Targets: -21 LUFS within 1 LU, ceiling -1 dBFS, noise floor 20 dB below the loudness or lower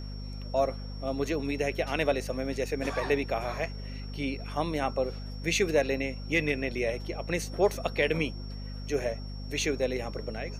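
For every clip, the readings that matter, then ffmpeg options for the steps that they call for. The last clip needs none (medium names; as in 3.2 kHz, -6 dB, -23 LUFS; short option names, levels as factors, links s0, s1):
hum 50 Hz; highest harmonic 250 Hz; hum level -36 dBFS; steady tone 5.5 kHz; tone level -49 dBFS; loudness -30.5 LUFS; peak level -13.0 dBFS; loudness target -21.0 LUFS
-> -af "bandreject=f=50:t=h:w=6,bandreject=f=100:t=h:w=6,bandreject=f=150:t=h:w=6,bandreject=f=200:t=h:w=6,bandreject=f=250:t=h:w=6"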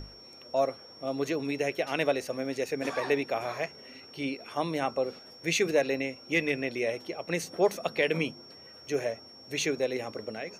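hum not found; steady tone 5.5 kHz; tone level -49 dBFS
-> -af "bandreject=f=5500:w=30"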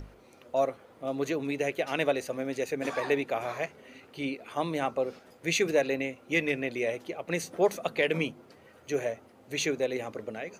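steady tone not found; loudness -31.0 LUFS; peak level -13.0 dBFS; loudness target -21.0 LUFS
-> -af "volume=3.16"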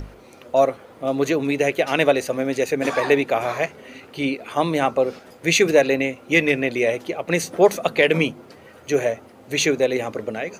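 loudness -21.0 LUFS; peak level -3.0 dBFS; noise floor -47 dBFS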